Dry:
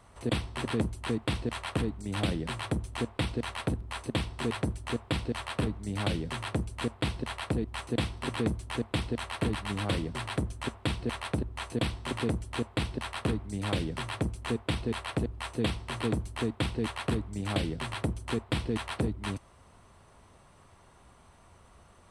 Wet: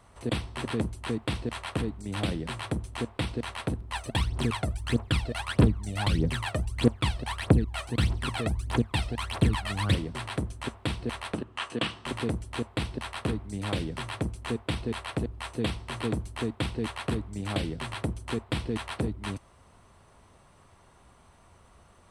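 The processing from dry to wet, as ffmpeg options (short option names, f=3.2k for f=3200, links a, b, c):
-filter_complex "[0:a]asplit=3[a][b][c];[a]afade=t=out:st=3.92:d=0.02[d];[b]aphaser=in_gain=1:out_gain=1:delay=1.7:decay=0.74:speed=1.6:type=triangular,afade=t=in:st=3.92:d=0.02,afade=t=out:st=9.94:d=0.02[e];[c]afade=t=in:st=9.94:d=0.02[f];[d][e][f]amix=inputs=3:normalize=0,asettb=1/sr,asplit=3[g][h][i];[g]atrim=end=11.344[j];[h]atrim=start=11.34:end=12.06,asetpts=PTS-STARTPTS,afade=t=in:d=0.004:c=qsin,afade=t=out:st=0.716:d=0.004:c=qsin,highpass=160,equalizer=f=1.2k:t=q:w=4:g=7,equalizer=f=1.7k:t=q:w=4:g=5,equalizer=f=2.9k:t=q:w=4:g=9,lowpass=f=9.5k:w=0.5412,lowpass=f=9.5k:w=1.3066[k];[i]atrim=start=12.056[l];[j][k]acrossfade=d=0.004:c1=hsin:c2=qsin[m];[m][l]acrossfade=d=0.004:c1=qsin:c2=hsin"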